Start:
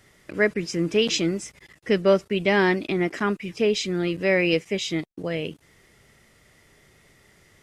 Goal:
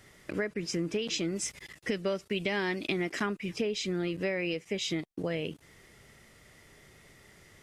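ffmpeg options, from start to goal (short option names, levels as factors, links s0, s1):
-filter_complex "[0:a]alimiter=limit=0.237:level=0:latency=1:release=406,acompressor=threshold=0.0355:ratio=5,asplit=3[s0][s1][s2];[s0]afade=t=out:st=1.35:d=0.02[s3];[s1]adynamicequalizer=threshold=0.00316:dfrequency=2000:dqfactor=0.7:tfrequency=2000:tqfactor=0.7:attack=5:release=100:ratio=0.375:range=3:mode=boostabove:tftype=highshelf,afade=t=in:st=1.35:d=0.02,afade=t=out:st=3.25:d=0.02[s4];[s2]afade=t=in:st=3.25:d=0.02[s5];[s3][s4][s5]amix=inputs=3:normalize=0"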